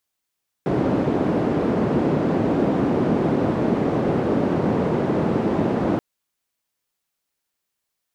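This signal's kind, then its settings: noise band 160–340 Hz, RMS -20.5 dBFS 5.33 s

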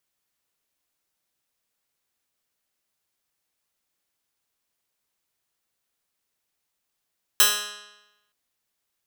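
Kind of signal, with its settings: plucked string G#3, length 0.92 s, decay 1.00 s, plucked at 0.09, bright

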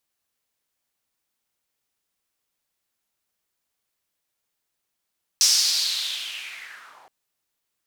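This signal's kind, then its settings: swept filtered noise white, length 1.67 s bandpass, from 5.6 kHz, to 680 Hz, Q 4.3, linear, gain ramp -27.5 dB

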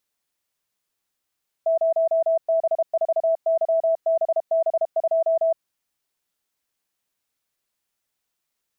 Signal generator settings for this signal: Morse "0B4YBB2" 32 wpm 655 Hz -16.5 dBFS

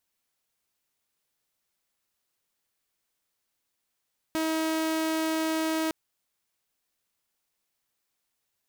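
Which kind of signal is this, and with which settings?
tone saw 319 Hz -23 dBFS 1.56 s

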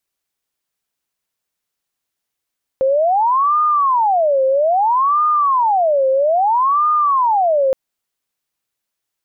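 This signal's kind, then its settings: siren wail 528–1220 Hz 0.61 per s sine -11.5 dBFS 4.92 s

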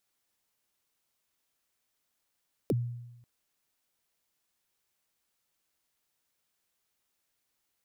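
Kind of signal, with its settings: kick drum length 0.54 s, from 550 Hz, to 120 Hz, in 33 ms, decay 0.98 s, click on, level -22.5 dB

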